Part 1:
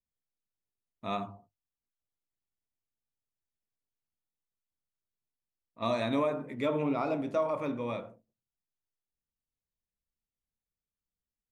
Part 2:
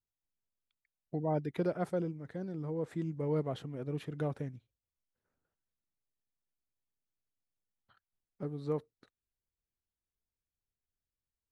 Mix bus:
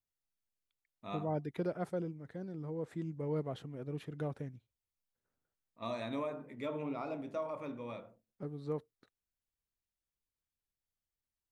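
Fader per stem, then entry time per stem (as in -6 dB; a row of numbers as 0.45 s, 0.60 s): -9.0 dB, -3.5 dB; 0.00 s, 0.00 s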